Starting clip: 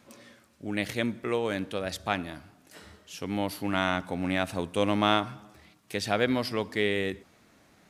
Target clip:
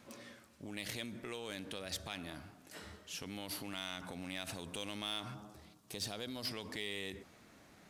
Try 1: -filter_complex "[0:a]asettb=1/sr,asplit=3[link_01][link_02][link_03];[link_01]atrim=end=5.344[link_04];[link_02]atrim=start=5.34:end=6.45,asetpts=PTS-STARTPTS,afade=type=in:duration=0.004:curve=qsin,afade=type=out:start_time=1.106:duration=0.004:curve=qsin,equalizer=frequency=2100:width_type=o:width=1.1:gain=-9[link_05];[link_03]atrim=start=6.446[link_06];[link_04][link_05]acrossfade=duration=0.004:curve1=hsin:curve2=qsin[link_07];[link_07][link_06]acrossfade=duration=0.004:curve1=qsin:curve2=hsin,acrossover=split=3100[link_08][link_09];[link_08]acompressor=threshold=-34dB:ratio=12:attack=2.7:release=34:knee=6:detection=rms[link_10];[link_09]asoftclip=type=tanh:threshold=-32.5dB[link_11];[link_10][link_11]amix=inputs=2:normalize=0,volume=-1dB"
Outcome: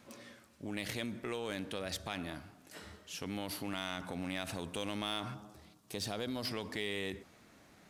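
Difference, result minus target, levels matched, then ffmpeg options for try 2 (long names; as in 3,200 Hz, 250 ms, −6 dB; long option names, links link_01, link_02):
downward compressor: peak gain reduction −6 dB
-filter_complex "[0:a]asettb=1/sr,asplit=3[link_01][link_02][link_03];[link_01]atrim=end=5.344[link_04];[link_02]atrim=start=5.34:end=6.45,asetpts=PTS-STARTPTS,afade=type=in:duration=0.004:curve=qsin,afade=type=out:start_time=1.106:duration=0.004:curve=qsin,equalizer=frequency=2100:width_type=o:width=1.1:gain=-9[link_05];[link_03]atrim=start=6.446[link_06];[link_04][link_05]acrossfade=duration=0.004:curve1=hsin:curve2=qsin[link_07];[link_07][link_06]acrossfade=duration=0.004:curve1=qsin:curve2=hsin,acrossover=split=3100[link_08][link_09];[link_08]acompressor=threshold=-40.5dB:ratio=12:attack=2.7:release=34:knee=6:detection=rms[link_10];[link_09]asoftclip=type=tanh:threshold=-32.5dB[link_11];[link_10][link_11]amix=inputs=2:normalize=0,volume=-1dB"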